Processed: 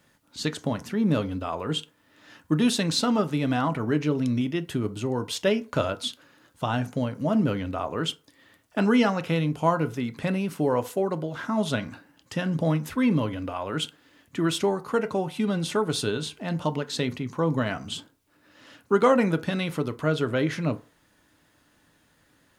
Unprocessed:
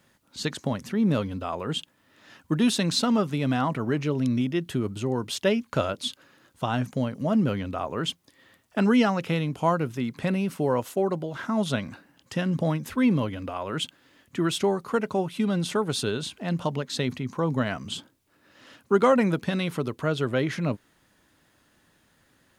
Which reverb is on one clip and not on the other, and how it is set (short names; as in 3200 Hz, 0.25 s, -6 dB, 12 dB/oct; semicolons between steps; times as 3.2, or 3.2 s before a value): FDN reverb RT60 0.36 s, low-frequency decay 0.75×, high-frequency decay 0.55×, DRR 9.5 dB